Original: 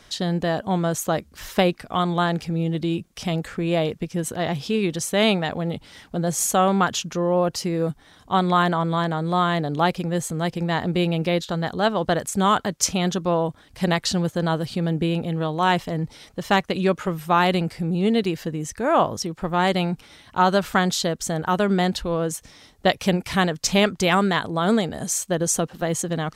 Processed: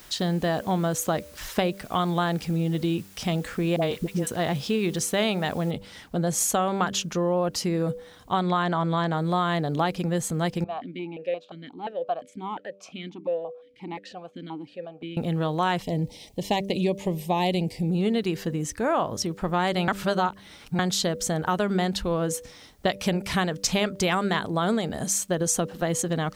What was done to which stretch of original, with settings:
3.76–4.27 dispersion highs, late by 61 ms, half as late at 660 Hz
5.71 noise floor step -52 dB -69 dB
8.41–9.13 LPF 7500 Hz
10.64–15.17 vowel sequencer 5.7 Hz
15.82–17.9 Butterworth band-stop 1400 Hz, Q 1.1
19.88–20.79 reverse
whole clip: de-hum 98.14 Hz, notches 6; compressor, threshold -20 dBFS

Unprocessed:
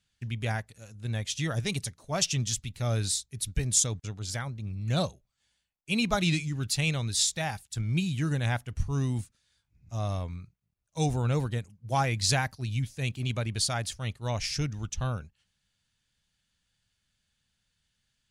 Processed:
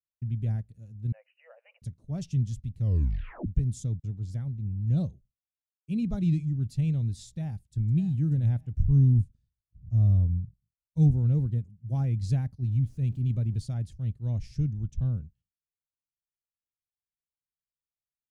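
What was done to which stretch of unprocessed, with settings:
1.12–1.82 brick-wall FIR band-pass 480–3000 Hz
2.79 tape stop 0.68 s
7.29–7.91 echo throw 0.59 s, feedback 20%, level -12.5 dB
8.84–11.11 low shelf 140 Hz +11 dB
12.62–13.66 zero-crossing step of -43 dBFS
whole clip: expander -53 dBFS; EQ curve 150 Hz 0 dB, 240 Hz -4 dB, 1100 Hz -27 dB; gain +4 dB

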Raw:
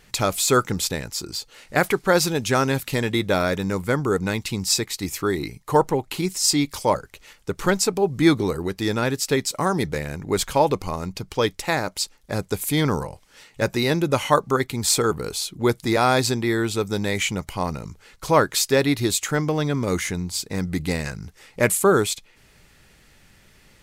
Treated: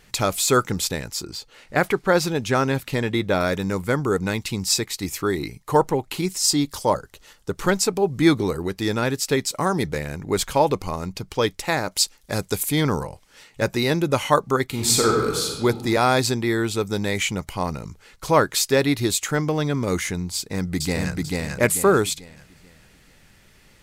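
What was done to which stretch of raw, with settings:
1.23–3.41 bell 12000 Hz -7 dB 2.1 oct
6.47–7.56 bell 2300 Hz -9.5 dB 0.34 oct
11.91–12.63 high shelf 2500 Hz +7 dB
14.67–15.64 reverb throw, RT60 1.4 s, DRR 0 dB
20.36–21.14 echo throw 0.44 s, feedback 35%, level -1.5 dB

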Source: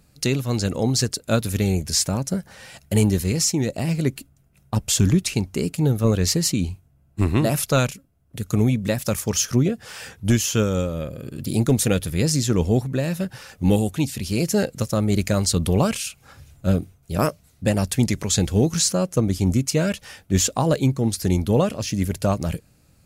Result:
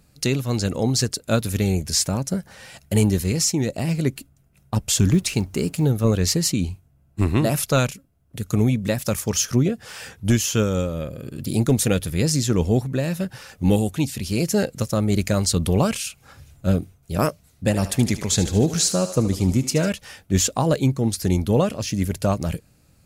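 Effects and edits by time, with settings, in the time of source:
5.12–5.85 G.711 law mismatch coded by mu
17.65–19.9 thinning echo 75 ms, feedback 64%, high-pass 360 Hz, level -11.5 dB

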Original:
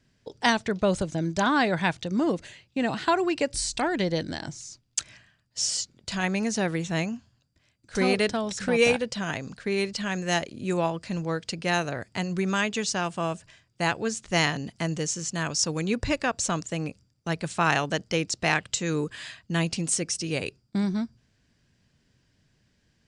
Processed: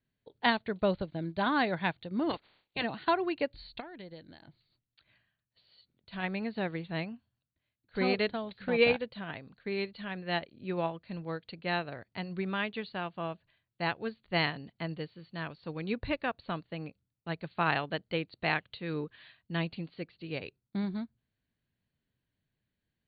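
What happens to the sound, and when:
2.29–2.82 spectral limiter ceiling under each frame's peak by 28 dB
3.8–6.13 compressor 2:1, threshold -38 dBFS
whole clip: Chebyshev low-pass 4500 Hz, order 10; upward expander 1.5:1, over -45 dBFS; gain -2.5 dB

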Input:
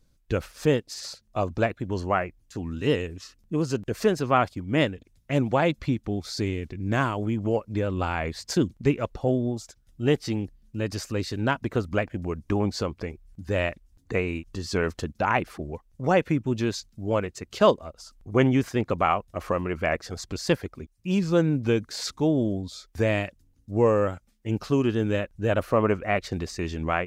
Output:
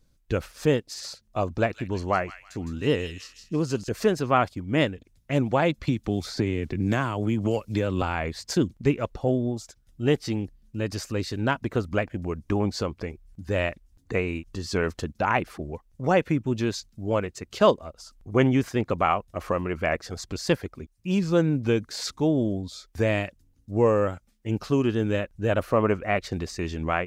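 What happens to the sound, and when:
1.54–3.89 thin delay 0.16 s, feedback 33%, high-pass 2800 Hz, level -4.5 dB
5.87–8.02 three-band squash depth 100%

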